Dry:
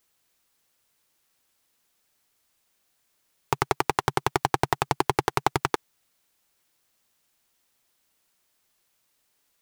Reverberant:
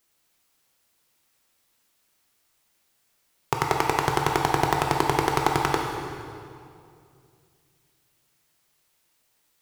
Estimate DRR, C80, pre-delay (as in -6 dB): 1.0 dB, 4.0 dB, 13 ms